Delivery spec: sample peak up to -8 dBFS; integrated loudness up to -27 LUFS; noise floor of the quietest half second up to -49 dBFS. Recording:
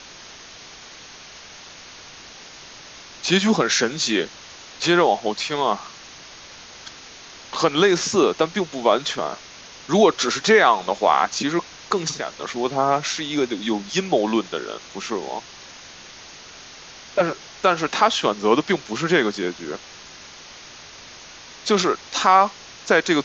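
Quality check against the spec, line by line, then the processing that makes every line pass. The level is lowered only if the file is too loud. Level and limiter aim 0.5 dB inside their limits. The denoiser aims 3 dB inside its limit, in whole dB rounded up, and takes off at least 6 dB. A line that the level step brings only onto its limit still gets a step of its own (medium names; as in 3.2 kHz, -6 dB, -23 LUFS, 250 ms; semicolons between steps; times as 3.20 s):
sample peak -2.5 dBFS: fail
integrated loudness -21.0 LUFS: fail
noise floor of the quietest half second -42 dBFS: fail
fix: noise reduction 6 dB, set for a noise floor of -42 dBFS; trim -6.5 dB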